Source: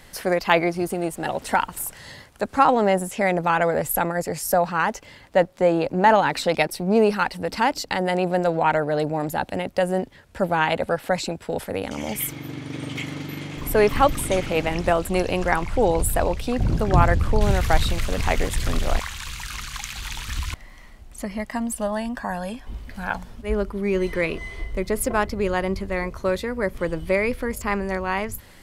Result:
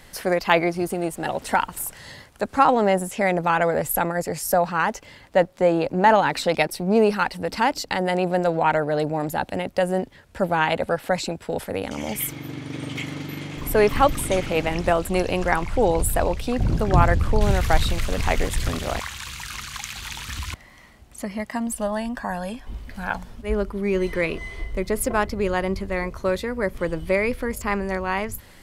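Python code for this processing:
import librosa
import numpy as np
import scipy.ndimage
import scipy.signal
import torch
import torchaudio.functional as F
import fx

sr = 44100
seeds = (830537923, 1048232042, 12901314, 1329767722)

y = fx.highpass(x, sr, hz=68.0, slope=12, at=(18.68, 21.67))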